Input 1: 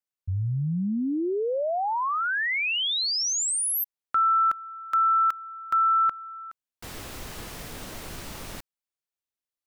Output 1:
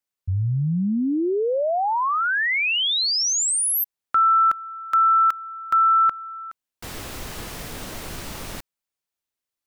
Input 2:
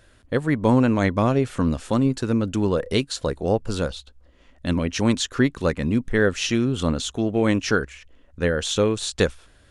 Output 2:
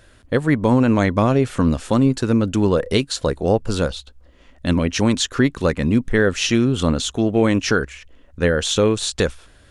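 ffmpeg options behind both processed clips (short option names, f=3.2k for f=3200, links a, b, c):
-af "alimiter=level_in=9dB:limit=-1dB:release=50:level=0:latency=1,volume=-4.5dB"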